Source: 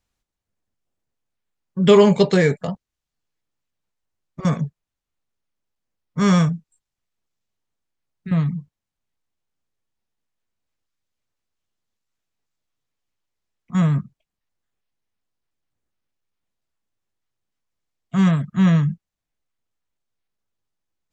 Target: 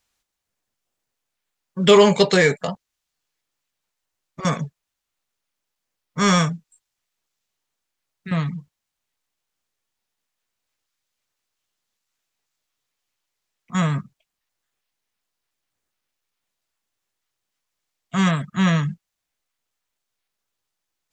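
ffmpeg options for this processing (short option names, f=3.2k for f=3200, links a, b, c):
-filter_complex "[0:a]crystalizer=i=3:c=0,asplit=2[a][b];[b]highpass=f=720:p=1,volume=9dB,asoftclip=type=tanh:threshold=-0.5dB[c];[a][c]amix=inputs=2:normalize=0,lowpass=f=2.8k:p=1,volume=-6dB"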